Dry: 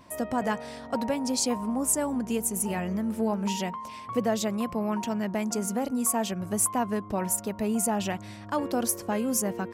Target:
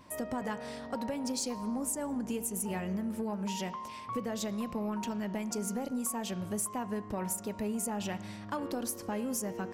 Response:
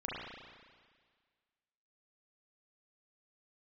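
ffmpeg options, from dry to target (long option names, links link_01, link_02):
-filter_complex "[0:a]bandreject=frequency=680:width=12,acompressor=threshold=-28dB:ratio=6,asoftclip=type=tanh:threshold=-21dB,asplit=2[link_01][link_02];[1:a]atrim=start_sample=2205,asetrate=66150,aresample=44100[link_03];[link_02][link_03]afir=irnorm=-1:irlink=0,volume=-11.5dB[link_04];[link_01][link_04]amix=inputs=2:normalize=0,volume=-3.5dB"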